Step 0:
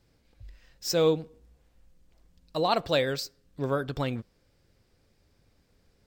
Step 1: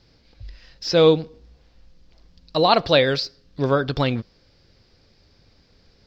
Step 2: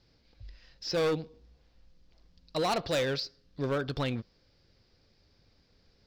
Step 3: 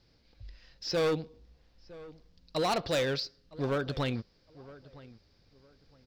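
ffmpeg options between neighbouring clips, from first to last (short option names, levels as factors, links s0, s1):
-filter_complex "[0:a]acrossover=split=3900[s0][s1];[s1]acompressor=threshold=0.00501:ratio=4:attack=1:release=60[s2];[s0][s2]amix=inputs=2:normalize=0,highshelf=f=6900:t=q:w=3:g=-13.5,volume=2.66"
-af "asoftclip=type=hard:threshold=0.158,volume=0.355"
-filter_complex "[0:a]asplit=2[s0][s1];[s1]adelay=962,lowpass=f=1900:p=1,volume=0.112,asplit=2[s2][s3];[s3]adelay=962,lowpass=f=1900:p=1,volume=0.25[s4];[s0][s2][s4]amix=inputs=3:normalize=0"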